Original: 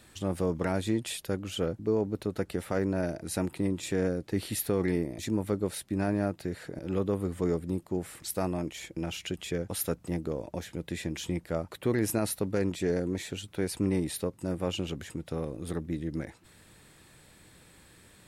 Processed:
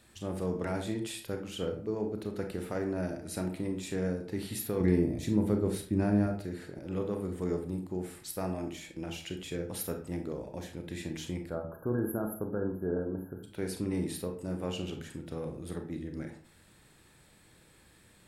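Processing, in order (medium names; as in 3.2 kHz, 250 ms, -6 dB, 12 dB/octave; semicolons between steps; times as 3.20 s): 4.80–6.27 s: bass shelf 370 Hz +9.5 dB; 11.50–13.44 s: spectral selection erased 1.7–11 kHz; reverberation RT60 0.45 s, pre-delay 28 ms, DRR 4 dB; trim -5.5 dB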